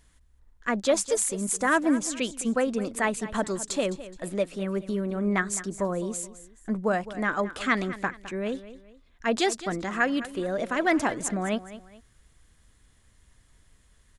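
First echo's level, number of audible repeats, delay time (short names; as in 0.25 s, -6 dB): -15.0 dB, 2, 0.211 s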